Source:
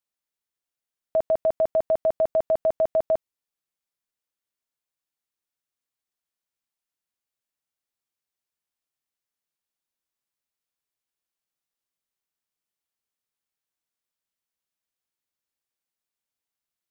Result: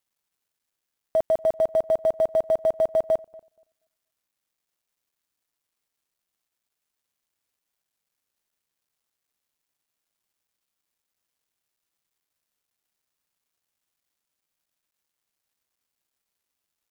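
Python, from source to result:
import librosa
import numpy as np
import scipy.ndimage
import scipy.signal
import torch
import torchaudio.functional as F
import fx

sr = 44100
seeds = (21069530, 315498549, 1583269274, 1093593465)

p1 = fx.law_mismatch(x, sr, coded='mu')
y = p1 + fx.echo_filtered(p1, sr, ms=238, feedback_pct=17, hz=1600.0, wet_db=-23, dry=0)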